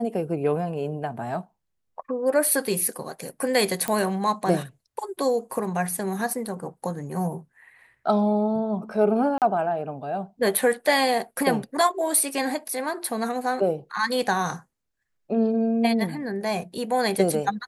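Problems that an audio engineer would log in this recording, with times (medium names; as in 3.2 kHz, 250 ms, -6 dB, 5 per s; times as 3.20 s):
3.88 s: pop -10 dBFS
9.38–9.42 s: dropout 38 ms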